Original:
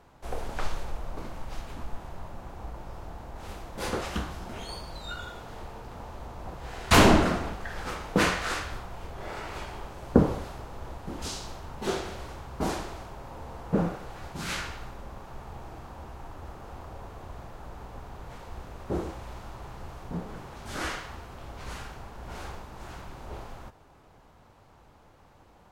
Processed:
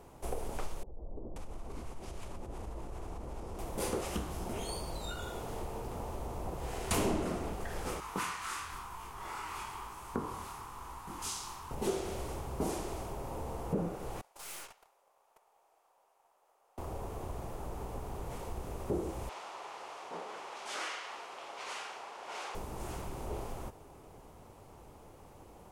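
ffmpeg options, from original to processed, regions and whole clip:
ffmpeg -i in.wav -filter_complex "[0:a]asettb=1/sr,asplit=3[link_01][link_02][link_03];[link_01]atrim=end=0.834[link_04];[link_02]atrim=start=0.83:end=3.59,asetpts=PTS-STARTPTS,afade=type=in:duration=0.004:curve=qsin,afade=type=out:start_time=2.756:duration=0.004:curve=qsin,acompressor=threshold=-38dB:ratio=10:attack=3.2:release=140:knee=1:detection=peak,lowpass=9800,acrossover=split=150|710[link_05][link_06][link_07];[link_05]adelay=30[link_08];[link_07]adelay=530[link_09];[link_08][link_06][link_09]amix=inputs=3:normalize=0,atrim=end_sample=121716[link_10];[link_03]atrim=start=3.586[link_11];[link_04][link_10]acrossfade=duration=0.004:curve1=hsin:curve2=qsin[link_12];[link_12][link_11]acrossfade=duration=0.004:curve1=qsin:curve2=hsin,asettb=1/sr,asplit=3[link_13][link_14][link_15];[link_13]atrim=end=8.004[link_16];[link_14]atrim=start=8:end=11.71,asetpts=PTS-STARTPTS,afade=type=in:duration=0.004:curve=qsin,afade=type=out:start_time=3.706:duration=0.004:curve=qsin,lowshelf=frequency=780:width_type=q:width=3:gain=-9.5,flanger=delay=19:depth=6.9:speed=1[link_17];[link_15]atrim=start=11.706[link_18];[link_16][link_17]acrossfade=duration=0.004:curve1=hsin:curve2=qsin[link_19];[link_19][link_18]acrossfade=duration=0.004:curve1=qsin:curve2=hsin,asettb=1/sr,asplit=3[link_20][link_21][link_22];[link_20]atrim=end=14.214[link_23];[link_21]atrim=start=14.21:end=16.78,asetpts=PTS-STARTPTS,afade=type=in:duration=0.004:curve=qsin,afade=type=out:start_time=2.566:duration=0.004:curve=qsin,agate=range=-21dB:threshold=-36dB:ratio=16:release=100:detection=peak,highpass=frequency=580:width=0.5412,highpass=frequency=580:width=1.3066,aeval=exprs='(tanh(224*val(0)+0.55)-tanh(0.55))/224':channel_layout=same[link_24];[link_22]atrim=start=16.776[link_25];[link_23][link_24]acrossfade=duration=0.004:curve1=hsin:curve2=qsin[link_26];[link_26][link_25]acrossfade=duration=0.004:curve1=qsin:curve2=hsin,asettb=1/sr,asplit=3[link_27][link_28][link_29];[link_27]atrim=end=19.294[link_30];[link_28]atrim=start=19.29:end=22.55,asetpts=PTS-STARTPTS,afade=type=in:duration=0.004:curve=qsin,afade=type=out:start_time=3.256:duration=0.004:curve=qsin,highpass=560,lowpass=4500,tiltshelf=frequency=710:gain=-6[link_31];[link_29]atrim=start=22.546[link_32];[link_30][link_31]acrossfade=duration=0.004:curve1=hsin:curve2=qsin[link_33];[link_33][link_32]acrossfade=duration=0.004:curve1=qsin:curve2=hsin,highshelf=frequency=8800:gain=5.5,acompressor=threshold=-37dB:ratio=3,equalizer=frequency=400:width_type=o:width=0.67:gain=5,equalizer=frequency=1600:width_type=o:width=0.67:gain=-7,equalizer=frequency=4000:width_type=o:width=0.67:gain=-5,equalizer=frequency=10000:width_type=o:width=0.67:gain=6,volume=2dB" out.wav

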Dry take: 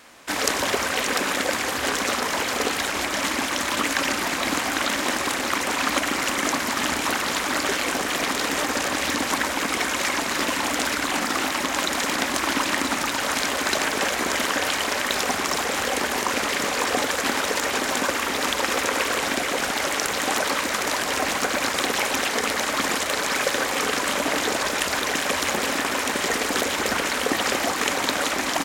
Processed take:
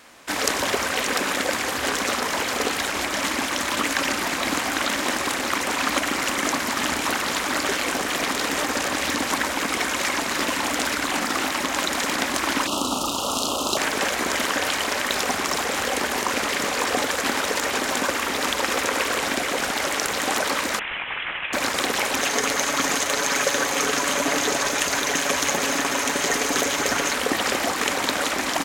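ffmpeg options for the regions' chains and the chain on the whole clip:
ffmpeg -i in.wav -filter_complex "[0:a]asettb=1/sr,asplit=3[link_01][link_02][link_03];[link_01]atrim=end=12.674[link_04];[link_02]atrim=start=12.67:end=13.77,asetpts=PTS-STARTPTS,afade=type=in:duration=0.004:curve=qsin,afade=type=out:start_time=1.096:duration=0.004:curve=qsin,asuperstop=centerf=1900:order=12:qfactor=1.4,asplit=2[link_05][link_06];[link_06]adelay=35,volume=-5dB[link_07];[link_05][link_07]amix=inputs=2:normalize=0,atrim=end_sample=48510[link_08];[link_03]atrim=start=13.766[link_09];[link_04][link_08]acrossfade=duration=0.004:curve1=hsin:curve2=qsin[link_10];[link_10][link_09]acrossfade=duration=0.004:curve1=qsin:curve2=hsin,asettb=1/sr,asplit=3[link_11][link_12][link_13];[link_11]atrim=end=20.794[link_14];[link_12]atrim=start=20.79:end=21.53,asetpts=PTS-STARTPTS,afade=type=in:duration=0.004:curve=qsin,afade=type=out:start_time=0.736:duration=0.004:curve=qsin,highpass=1400,acrusher=bits=3:mode=log:mix=0:aa=0.000001,lowpass=frequency=3400:width_type=q:width=0.5098,lowpass=frequency=3400:width_type=q:width=0.6013,lowpass=frequency=3400:width_type=q:width=0.9,lowpass=frequency=3400:width_type=q:width=2.563,afreqshift=-4000[link_15];[link_13]atrim=start=21.526[link_16];[link_14][link_15]acrossfade=duration=0.004:curve1=hsin:curve2=qsin[link_17];[link_17][link_16]acrossfade=duration=0.004:curve1=qsin:curve2=hsin,asettb=1/sr,asplit=3[link_18][link_19][link_20];[link_18]atrim=end=22.214[link_21];[link_19]atrim=start=22.21:end=27.14,asetpts=PTS-STARTPTS,afade=type=in:duration=0.004:curve=qsin,afade=type=out:start_time=4.926:duration=0.004:curve=qsin,equalizer=frequency=6400:width=7.9:gain=8.5,aecho=1:1:7.1:0.39,atrim=end_sample=217413[link_22];[link_20]atrim=start=27.136[link_23];[link_21][link_22]acrossfade=duration=0.004:curve1=hsin:curve2=qsin[link_24];[link_24][link_23]acrossfade=duration=0.004:curve1=qsin:curve2=hsin" out.wav

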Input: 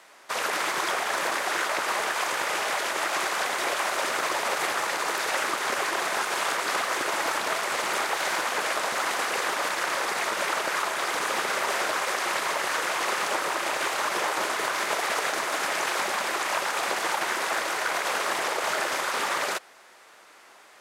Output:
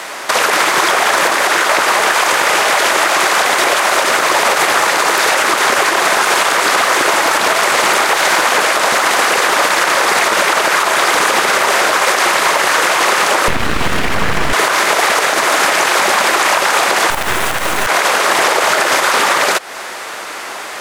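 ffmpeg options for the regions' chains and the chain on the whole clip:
ffmpeg -i in.wav -filter_complex "[0:a]asettb=1/sr,asplit=3[link_01][link_02][link_03];[link_01]atrim=end=13.484[link_04];[link_02]atrim=start=13.48:end=14.53,asetpts=PTS-STARTPTS,afade=type=in:duration=0.004:curve=qsin,afade=type=out:start_time=1.046:duration=0.004:curve=qsin,tiltshelf=frequency=1200:gain=9,aeval=exprs='abs(val(0))':channel_layout=same[link_05];[link_03]atrim=start=14.526[link_06];[link_04][link_05]acrossfade=duration=0.004:curve1=hsin:curve2=qsin[link_07];[link_07][link_06]acrossfade=duration=0.004:curve1=qsin:curve2=hsin,asettb=1/sr,asplit=3[link_08][link_09][link_10];[link_08]atrim=end=17.104[link_11];[link_09]atrim=start=17.1:end=17.87,asetpts=PTS-STARTPTS,afade=type=in:duration=0.004:curve=qsin,afade=type=out:start_time=0.766:duration=0.004:curve=qsin,equalizer=frequency=4700:width_type=o:width=0.78:gain=-9,bandreject=frequency=87.41:width_type=h:width=4,bandreject=frequency=174.82:width_type=h:width=4,bandreject=frequency=262.23:width_type=h:width=4,bandreject=frequency=349.64:width_type=h:width=4,bandreject=frequency=437.05:width_type=h:width=4,bandreject=frequency=524.46:width_type=h:width=4,bandreject=frequency=611.87:width_type=h:width=4,bandreject=frequency=699.28:width_type=h:width=4,bandreject=frequency=786.69:width_type=h:width=4,bandreject=frequency=874.1:width_type=h:width=4,bandreject=frequency=961.51:width_type=h:width=4,bandreject=frequency=1048.92:width_type=h:width=4,bandreject=frequency=1136.33:width_type=h:width=4,bandreject=frequency=1223.74:width_type=h:width=4,bandreject=frequency=1311.15:width_type=h:width=4,bandreject=frequency=1398.56:width_type=h:width=4,bandreject=frequency=1485.97:width_type=h:width=4,bandreject=frequency=1573.38:width_type=h:width=4,bandreject=frequency=1660.79:width_type=h:width=4,bandreject=frequency=1748.2:width_type=h:width=4,bandreject=frequency=1835.61:width_type=h:width=4,bandreject=frequency=1923.02:width_type=h:width=4,bandreject=frequency=2010.43:width_type=h:width=4,bandreject=frequency=2097.84:width_type=h:width=4,bandreject=frequency=2185.25:width_type=h:width=4,bandreject=frequency=2272.66:width_type=h:width=4,bandreject=frequency=2360.07:width_type=h:width=4,bandreject=frequency=2447.48:width_type=h:width=4,bandreject=frequency=2534.89:width_type=h:width=4,acrusher=bits=4:dc=4:mix=0:aa=0.000001[link_12];[link_10]atrim=start=17.866[link_13];[link_11][link_12]acrossfade=duration=0.004:curve1=hsin:curve2=qsin[link_14];[link_14][link_13]acrossfade=duration=0.004:curve1=qsin:curve2=hsin,acompressor=threshold=-36dB:ratio=6,alimiter=level_in=27.5dB:limit=-1dB:release=50:level=0:latency=1,volume=-1dB" out.wav

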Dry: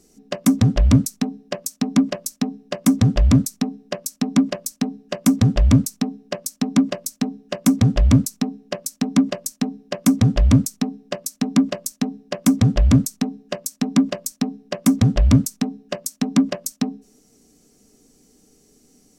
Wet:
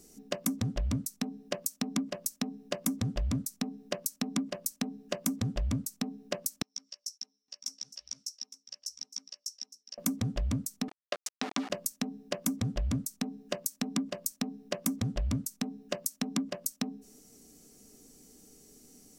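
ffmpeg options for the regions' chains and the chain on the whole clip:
ffmpeg -i in.wav -filter_complex "[0:a]asettb=1/sr,asplit=3[link_01][link_02][link_03];[link_01]atrim=end=6.624[link_04];[link_02]atrim=start=6.62:end=9.98,asetpts=PTS-STARTPTS,afade=type=in:duration=0.004:curve=qsin,afade=type=out:start_time=3.356:duration=0.004:curve=qsin,bandpass=frequency=5500:width_type=q:width=11,asplit=2[link_05][link_06];[link_06]adelay=14,volume=-4.5dB[link_07];[link_05][link_07]amix=inputs=2:normalize=0,atrim=end_sample=148176,aecho=1:1:861:0.2,atrim=end_sample=148176[link_08];[link_03]atrim=start=9.976[link_09];[link_04][link_08]acrossfade=duration=0.004:curve1=hsin:curve2=qsin[link_10];[link_10][link_09]acrossfade=duration=0.004:curve1=qsin:curve2=hsin,asettb=1/sr,asplit=3[link_11][link_12][link_13];[link_11]atrim=end=10.884[link_14];[link_12]atrim=start=10.88:end=11.7,asetpts=PTS-STARTPTS,afade=type=in:duration=0.004:curve=qsin,afade=type=out:start_time=0.816:duration=0.004:curve=qsin,aeval=exprs='val(0)*gte(abs(val(0)),0.0422)':channel_layout=same,highpass=490,lowpass=4500[link_15];[link_13]atrim=start=11.696[link_16];[link_14][link_15]acrossfade=duration=0.004:curve1=hsin:curve2=qsin[link_17];[link_17][link_16]acrossfade=duration=0.004:curve1=qsin:curve2=hsin,highshelf=frequency=10000:gain=10.5,acompressor=threshold=-27dB:ratio=6,volume=-2.5dB" out.wav

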